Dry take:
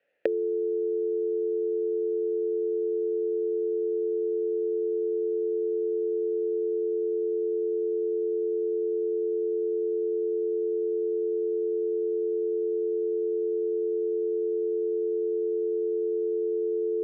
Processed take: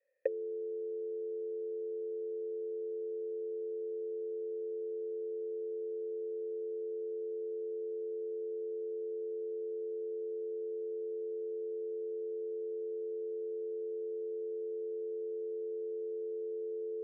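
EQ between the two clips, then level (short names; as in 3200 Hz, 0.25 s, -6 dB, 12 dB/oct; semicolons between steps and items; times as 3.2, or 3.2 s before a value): vocal tract filter e; HPF 310 Hz; 0.0 dB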